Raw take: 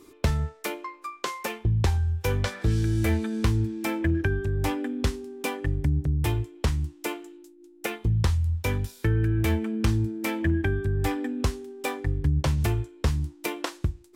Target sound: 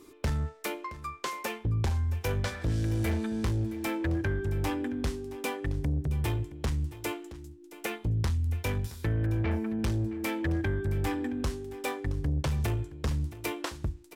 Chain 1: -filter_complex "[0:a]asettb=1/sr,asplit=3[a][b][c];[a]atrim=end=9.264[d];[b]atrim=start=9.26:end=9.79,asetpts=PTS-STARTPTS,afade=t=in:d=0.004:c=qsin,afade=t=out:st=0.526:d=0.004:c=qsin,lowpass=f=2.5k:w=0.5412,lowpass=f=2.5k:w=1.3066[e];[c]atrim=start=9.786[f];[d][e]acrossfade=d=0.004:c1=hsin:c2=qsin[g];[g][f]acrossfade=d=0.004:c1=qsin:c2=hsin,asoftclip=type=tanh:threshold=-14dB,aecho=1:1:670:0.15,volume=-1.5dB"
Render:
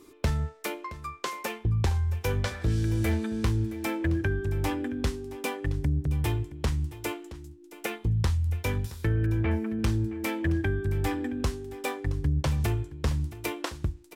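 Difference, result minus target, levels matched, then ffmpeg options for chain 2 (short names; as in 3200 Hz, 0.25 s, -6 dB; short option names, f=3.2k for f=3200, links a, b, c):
soft clip: distortion -11 dB
-filter_complex "[0:a]asettb=1/sr,asplit=3[a][b][c];[a]atrim=end=9.264[d];[b]atrim=start=9.26:end=9.79,asetpts=PTS-STARTPTS,afade=t=in:d=0.004:c=qsin,afade=t=out:st=0.526:d=0.004:c=qsin,lowpass=f=2.5k:w=0.5412,lowpass=f=2.5k:w=1.3066[e];[c]atrim=start=9.786[f];[d][e]acrossfade=d=0.004:c1=hsin:c2=qsin[g];[g][f]acrossfade=d=0.004:c1=qsin:c2=hsin,asoftclip=type=tanh:threshold=-22dB,aecho=1:1:670:0.15,volume=-1.5dB"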